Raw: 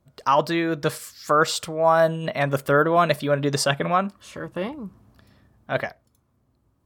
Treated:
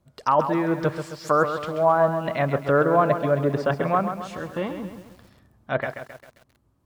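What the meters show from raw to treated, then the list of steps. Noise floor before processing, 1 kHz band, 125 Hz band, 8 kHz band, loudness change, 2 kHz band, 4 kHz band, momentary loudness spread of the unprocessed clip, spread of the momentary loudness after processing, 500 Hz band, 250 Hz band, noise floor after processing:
−68 dBFS, −0.5 dB, +0.5 dB, below −10 dB, −1.0 dB, −3.5 dB, −11.5 dB, 15 LU, 13 LU, 0.0 dB, +0.5 dB, −66 dBFS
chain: treble cut that deepens with the level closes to 1,300 Hz, closed at −18.5 dBFS
feedback echo at a low word length 133 ms, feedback 55%, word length 8 bits, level −8.5 dB

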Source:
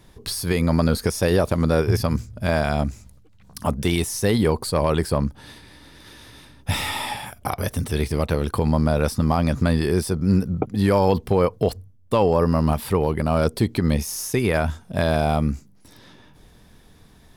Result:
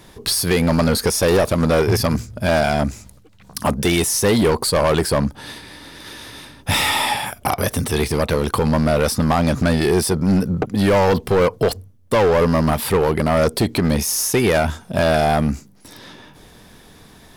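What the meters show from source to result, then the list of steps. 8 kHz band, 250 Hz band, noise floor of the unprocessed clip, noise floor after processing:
+9.0 dB, +3.0 dB, −52 dBFS, −47 dBFS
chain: in parallel at −4.5 dB: soft clipping −23 dBFS, distortion −7 dB
on the sum: low-shelf EQ 140 Hz −9.5 dB
hard clipping −17 dBFS, distortion −11 dB
level +5.5 dB

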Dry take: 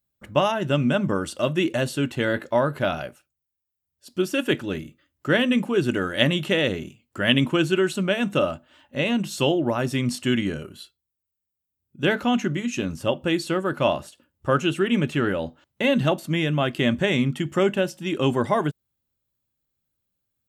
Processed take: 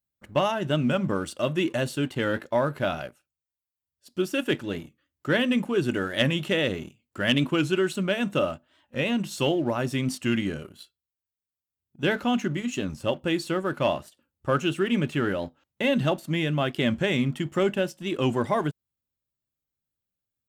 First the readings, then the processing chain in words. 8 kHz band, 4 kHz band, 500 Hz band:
−3.0 dB, −3.5 dB, −3.0 dB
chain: leveller curve on the samples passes 1
wow of a warped record 45 rpm, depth 100 cents
level −6.5 dB

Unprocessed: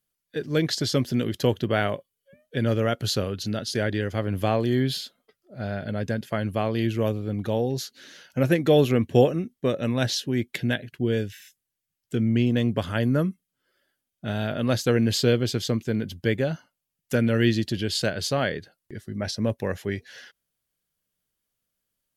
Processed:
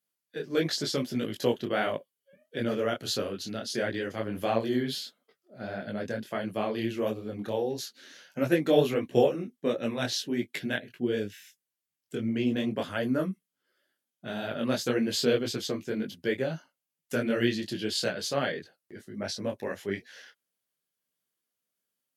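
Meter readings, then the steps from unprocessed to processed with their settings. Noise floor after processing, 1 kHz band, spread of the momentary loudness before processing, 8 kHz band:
below −85 dBFS, −3.5 dB, 11 LU, −3.5 dB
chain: high-pass filter 200 Hz 12 dB per octave
micro pitch shift up and down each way 53 cents

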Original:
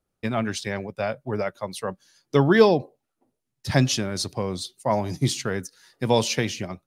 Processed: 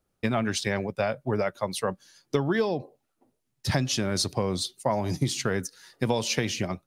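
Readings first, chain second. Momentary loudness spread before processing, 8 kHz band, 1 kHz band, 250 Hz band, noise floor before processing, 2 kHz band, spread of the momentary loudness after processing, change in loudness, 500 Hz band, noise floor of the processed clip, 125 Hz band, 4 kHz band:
13 LU, −0.5 dB, −3.5 dB, −3.5 dB, −81 dBFS, −3.0 dB, 6 LU, −3.5 dB, −5.0 dB, −78 dBFS, −3.5 dB, −1.5 dB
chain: downward compressor 16 to 1, threshold −24 dBFS, peak gain reduction 15.5 dB
level +3 dB

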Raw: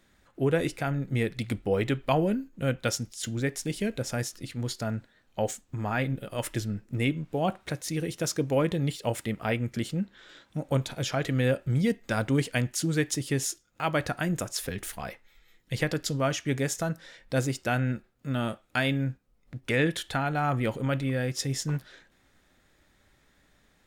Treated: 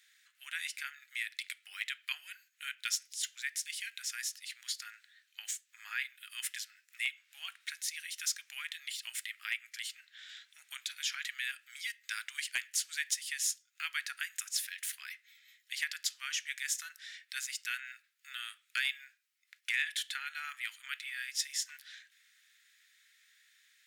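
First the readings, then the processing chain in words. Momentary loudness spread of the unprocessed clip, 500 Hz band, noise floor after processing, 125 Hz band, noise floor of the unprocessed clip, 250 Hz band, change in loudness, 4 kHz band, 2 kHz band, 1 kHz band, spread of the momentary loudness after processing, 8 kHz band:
8 LU, below −40 dB, −75 dBFS, below −40 dB, −66 dBFS, below −40 dB, −8.0 dB, −0.5 dB, −2.5 dB, −18.5 dB, 12 LU, −0.5 dB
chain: Butterworth high-pass 1,700 Hz 36 dB per octave
in parallel at −1 dB: downward compressor 5 to 1, threshold −47 dBFS, peak gain reduction 18.5 dB
on the sum: hard clipping −19.5 dBFS, distortion −27 dB
level −2 dB

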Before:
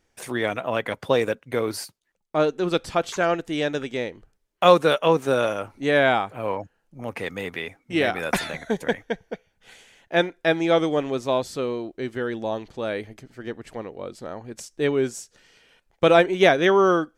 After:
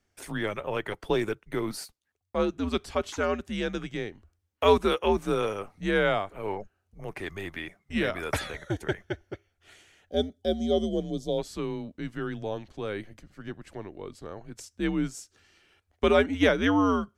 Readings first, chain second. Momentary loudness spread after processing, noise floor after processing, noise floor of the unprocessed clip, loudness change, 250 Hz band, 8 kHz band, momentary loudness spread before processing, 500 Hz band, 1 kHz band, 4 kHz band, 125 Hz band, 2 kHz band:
19 LU, −76 dBFS, −72 dBFS, −5.5 dB, −2.5 dB, −5.5 dB, 18 LU, −6.5 dB, −7.0 dB, −5.5 dB, −3.0 dB, −6.5 dB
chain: frequency shifter −100 Hz
gain on a spectral selection 0:10.10–0:11.38, 780–3,000 Hz −19 dB
level −5.5 dB

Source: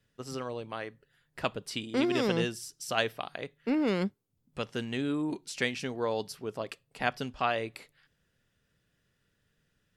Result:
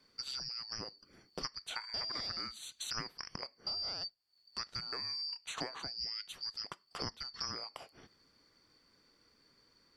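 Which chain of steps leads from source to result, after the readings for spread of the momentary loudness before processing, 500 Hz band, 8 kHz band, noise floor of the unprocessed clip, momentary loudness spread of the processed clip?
12 LU, −19.5 dB, −3.5 dB, −76 dBFS, 7 LU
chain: band-splitting scrambler in four parts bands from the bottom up 2341
low-pass filter 3,700 Hz 6 dB per octave
downward compressor 5 to 1, threshold −48 dBFS, peak gain reduction 20.5 dB
level +8.5 dB

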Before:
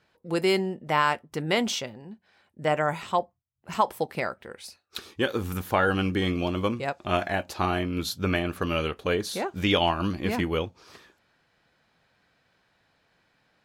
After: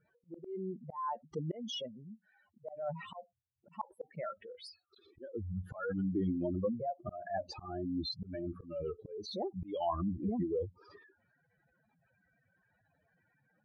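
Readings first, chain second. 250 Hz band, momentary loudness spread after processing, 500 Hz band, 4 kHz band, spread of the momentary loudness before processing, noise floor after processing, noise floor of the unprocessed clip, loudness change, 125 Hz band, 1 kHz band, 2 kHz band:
−9.0 dB, 16 LU, −11.5 dB, −14.5 dB, 12 LU, −77 dBFS, −70 dBFS, −12.0 dB, −10.0 dB, −14.0 dB, −24.0 dB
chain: expanding power law on the bin magnitudes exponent 4
volume swells 316 ms
downsampling to 22,050 Hz
level −6 dB

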